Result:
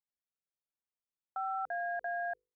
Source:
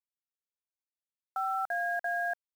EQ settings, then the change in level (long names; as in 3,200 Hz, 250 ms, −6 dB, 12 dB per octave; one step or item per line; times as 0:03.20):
head-to-tape spacing loss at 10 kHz 40 dB
mains-hum notches 50/100/150/200/250/300/350/400/450/500 Hz
0.0 dB